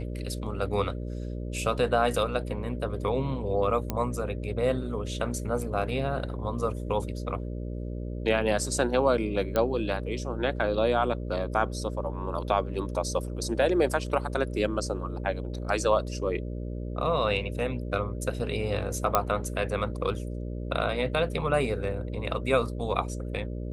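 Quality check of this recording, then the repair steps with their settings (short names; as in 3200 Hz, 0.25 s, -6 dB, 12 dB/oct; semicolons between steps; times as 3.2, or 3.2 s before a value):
buzz 60 Hz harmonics 10 -34 dBFS
3.9 pop -14 dBFS
9.56 pop -13 dBFS
19.15 pop -7 dBFS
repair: de-click; de-hum 60 Hz, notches 10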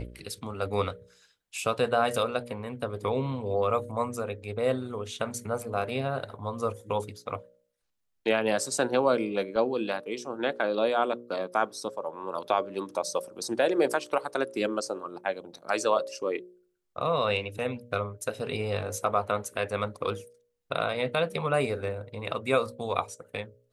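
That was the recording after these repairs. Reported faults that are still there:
9.56 pop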